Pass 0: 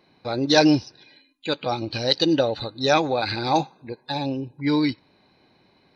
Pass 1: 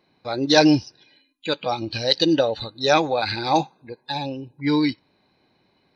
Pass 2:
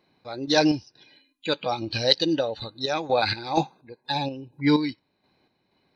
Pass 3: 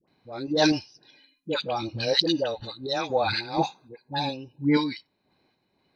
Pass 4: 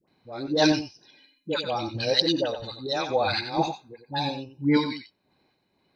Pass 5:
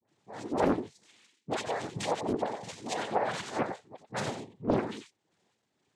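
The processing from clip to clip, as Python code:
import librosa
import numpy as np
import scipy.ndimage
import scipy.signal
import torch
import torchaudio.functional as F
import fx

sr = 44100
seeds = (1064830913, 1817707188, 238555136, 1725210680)

y1 = fx.noise_reduce_blind(x, sr, reduce_db=6)
y1 = y1 * 10.0 ** (1.5 / 20.0)
y2 = fx.tremolo_random(y1, sr, seeds[0], hz=4.2, depth_pct=75)
y2 = y2 * 10.0 ** (1.5 / 20.0)
y3 = fx.dispersion(y2, sr, late='highs', ms=79.0, hz=840.0)
y3 = y3 * 10.0 ** (-1.5 / 20.0)
y4 = y3 + 10.0 ** (-9.5 / 20.0) * np.pad(y3, (int(91 * sr / 1000.0), 0))[:len(y3)]
y5 = fx.env_lowpass_down(y4, sr, base_hz=1100.0, full_db=-18.5)
y5 = fx.noise_vocoder(y5, sr, seeds[1], bands=6)
y5 = fx.doppler_dist(y5, sr, depth_ms=0.84)
y5 = y5 * 10.0 ** (-5.0 / 20.0)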